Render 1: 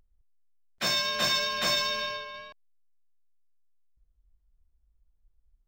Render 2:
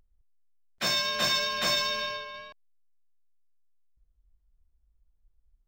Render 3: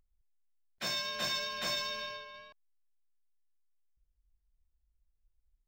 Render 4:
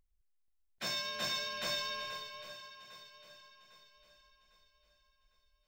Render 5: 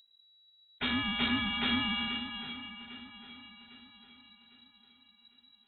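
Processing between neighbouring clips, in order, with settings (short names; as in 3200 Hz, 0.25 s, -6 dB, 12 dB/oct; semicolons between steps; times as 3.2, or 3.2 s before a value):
nothing audible
notch 1200 Hz, Q 14; gain -8 dB
swung echo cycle 0.803 s, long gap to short 1.5:1, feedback 41%, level -12.5 dB; gain -2 dB
inverted band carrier 3900 Hz; gain +8 dB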